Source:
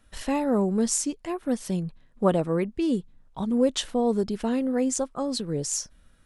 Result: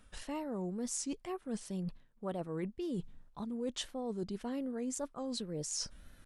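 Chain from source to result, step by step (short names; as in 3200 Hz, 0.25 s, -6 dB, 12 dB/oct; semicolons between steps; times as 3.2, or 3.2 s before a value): reverse; compressor 6:1, threshold -39 dBFS, peak gain reduction 21 dB; reverse; wow and flutter 110 cents; gain +2 dB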